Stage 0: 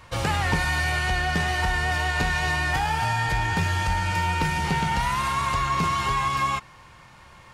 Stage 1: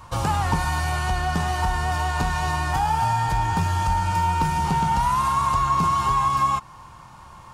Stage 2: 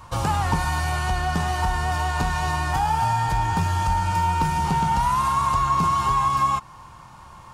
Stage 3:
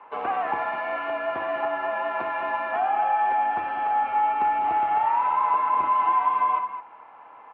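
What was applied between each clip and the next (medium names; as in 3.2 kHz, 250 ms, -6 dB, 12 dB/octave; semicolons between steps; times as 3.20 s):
ten-band graphic EQ 500 Hz -6 dB, 1 kHz +7 dB, 2 kHz -11 dB, 4 kHz -4 dB; in parallel at -3 dB: compression, threshold -30 dBFS, peak gain reduction 11.5 dB
no audible change
on a send: multi-tap echo 60/200/214 ms -10/-12/-13.5 dB; on the sum: mistuned SSB -75 Hz 390–2600 Hz; trim -1.5 dB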